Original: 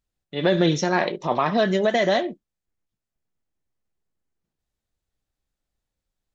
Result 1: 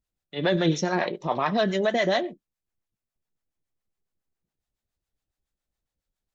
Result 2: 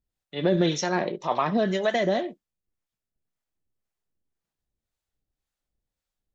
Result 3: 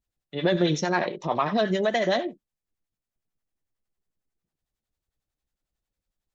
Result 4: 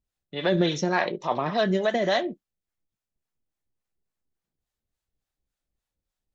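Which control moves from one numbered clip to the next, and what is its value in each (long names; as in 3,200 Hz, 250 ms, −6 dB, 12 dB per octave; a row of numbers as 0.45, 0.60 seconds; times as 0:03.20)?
two-band tremolo in antiphase, speed: 7.2, 1.9, 11, 3.5 Hertz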